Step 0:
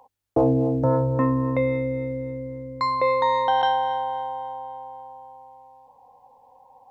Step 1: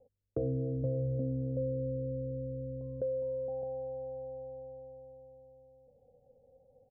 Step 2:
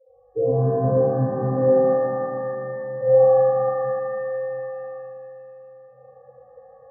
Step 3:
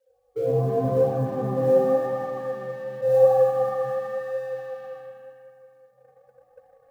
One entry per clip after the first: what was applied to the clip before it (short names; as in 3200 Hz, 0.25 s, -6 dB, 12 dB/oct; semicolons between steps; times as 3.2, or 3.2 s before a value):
steep low-pass 520 Hz 48 dB/oct; comb 1.5 ms, depth 62%; compressor 2:1, threshold -40 dBFS, peak gain reduction 13 dB
loudest bins only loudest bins 4; tilt shelf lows +3 dB, about 660 Hz; shimmer reverb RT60 2.7 s, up +7 st, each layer -8 dB, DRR -11.5 dB; gain +5.5 dB
G.711 law mismatch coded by A; flange 0.9 Hz, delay 1 ms, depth 5.6 ms, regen +53%; gain +2 dB